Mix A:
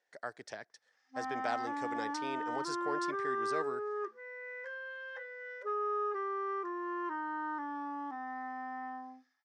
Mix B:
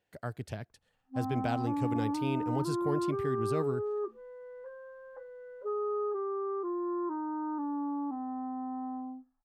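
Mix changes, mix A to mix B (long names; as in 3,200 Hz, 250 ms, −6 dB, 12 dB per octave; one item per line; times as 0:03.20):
background: add inverse Chebyshev low-pass filter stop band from 3,000 Hz, stop band 50 dB
master: remove loudspeaker in its box 500–8,100 Hz, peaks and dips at 1,800 Hz +6 dB, 2,800 Hz −8 dB, 5,600 Hz +8 dB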